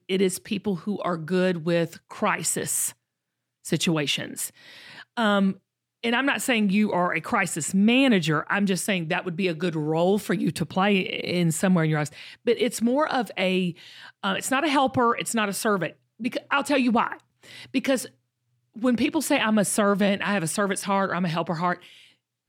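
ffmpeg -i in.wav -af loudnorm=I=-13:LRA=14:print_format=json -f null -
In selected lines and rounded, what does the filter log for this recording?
"input_i" : "-24.3",
"input_tp" : "-10.2",
"input_lra" : "3.4",
"input_thresh" : "-34.7",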